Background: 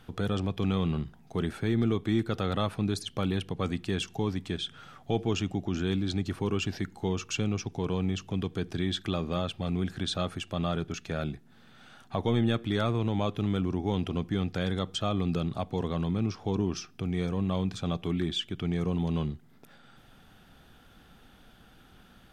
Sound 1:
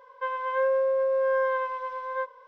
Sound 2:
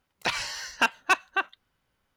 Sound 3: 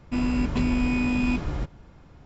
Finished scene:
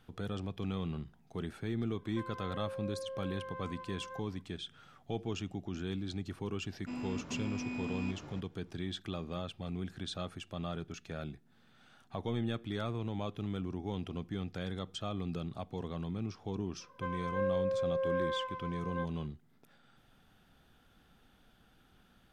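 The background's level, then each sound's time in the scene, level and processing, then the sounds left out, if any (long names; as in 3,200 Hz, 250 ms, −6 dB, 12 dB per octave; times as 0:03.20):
background −9 dB
0:01.95: mix in 1 −14.5 dB + brickwall limiter −23.5 dBFS
0:06.75: mix in 3 −14 dB + high-pass filter 150 Hz
0:16.80: mix in 1 −10.5 dB + low-shelf EQ 360 Hz +6 dB
not used: 2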